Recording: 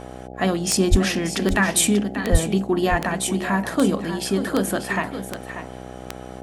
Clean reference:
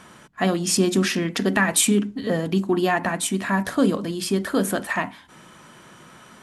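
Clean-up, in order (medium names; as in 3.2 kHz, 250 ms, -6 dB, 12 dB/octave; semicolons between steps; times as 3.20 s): de-click; de-hum 63.1 Hz, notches 13; 0.90–1.02 s: high-pass 140 Hz 24 dB/octave; 2.31–2.43 s: high-pass 140 Hz 24 dB/octave; inverse comb 588 ms -10.5 dB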